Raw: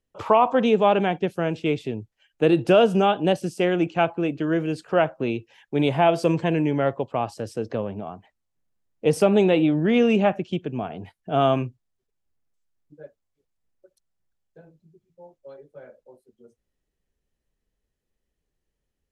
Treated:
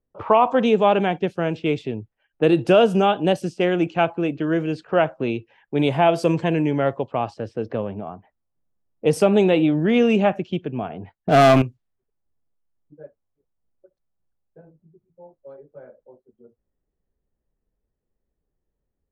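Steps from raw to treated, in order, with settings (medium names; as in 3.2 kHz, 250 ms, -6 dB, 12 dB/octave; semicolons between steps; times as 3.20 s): 11.15–11.62 s: waveshaping leveller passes 3; level-controlled noise filter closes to 1.1 kHz, open at -17.5 dBFS; trim +1.5 dB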